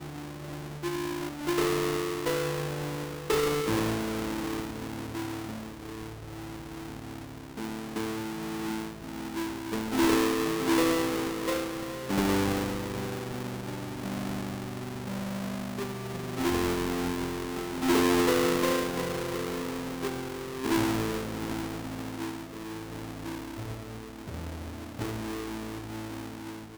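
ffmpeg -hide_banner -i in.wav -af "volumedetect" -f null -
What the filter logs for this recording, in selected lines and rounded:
mean_volume: -31.2 dB
max_volume: -18.1 dB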